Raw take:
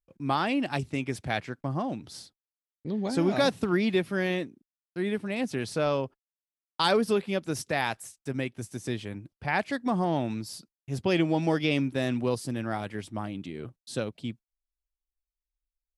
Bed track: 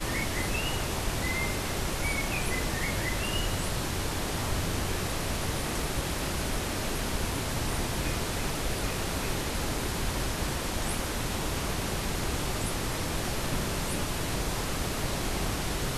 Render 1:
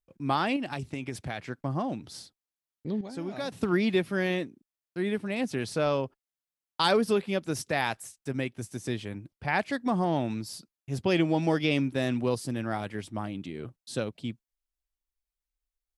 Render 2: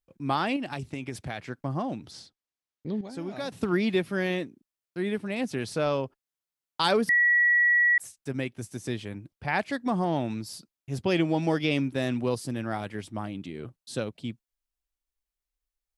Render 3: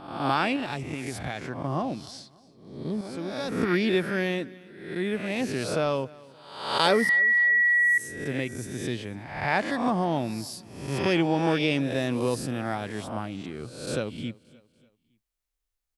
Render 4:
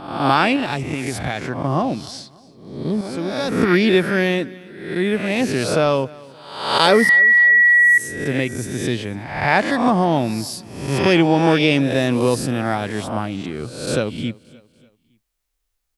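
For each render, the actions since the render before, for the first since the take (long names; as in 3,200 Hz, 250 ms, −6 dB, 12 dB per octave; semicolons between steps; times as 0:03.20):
0:00.56–0:01.47: downward compressor, threshold −29 dBFS; 0:03.01–0:03.52: clip gain −10.5 dB
0:02.11–0:02.93: low-pass filter 6,700 Hz; 0:07.09–0:07.98: beep over 1,930 Hz −18 dBFS
peak hold with a rise ahead of every peak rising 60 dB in 0.76 s; repeating echo 288 ms, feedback 44%, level −22.5 dB
level +9 dB; brickwall limiter −1 dBFS, peak gain reduction 2.5 dB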